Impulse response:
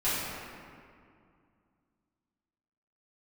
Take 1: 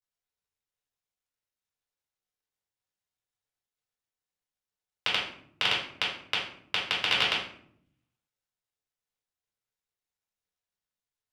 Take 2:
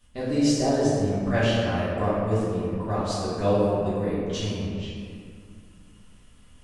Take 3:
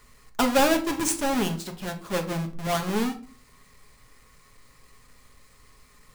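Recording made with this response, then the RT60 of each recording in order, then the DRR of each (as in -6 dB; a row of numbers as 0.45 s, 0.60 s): 2; 0.65 s, 2.3 s, 0.45 s; -5.5 dB, -13.0 dB, 4.0 dB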